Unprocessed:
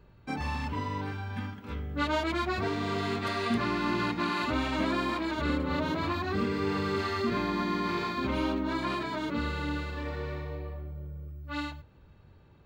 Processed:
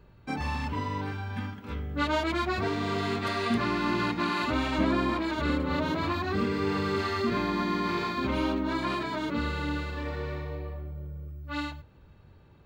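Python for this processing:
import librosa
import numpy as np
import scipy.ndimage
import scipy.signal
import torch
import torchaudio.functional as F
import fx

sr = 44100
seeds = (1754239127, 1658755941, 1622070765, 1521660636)

y = fx.tilt_eq(x, sr, slope=-1.5, at=(4.78, 5.21))
y = y * librosa.db_to_amplitude(1.5)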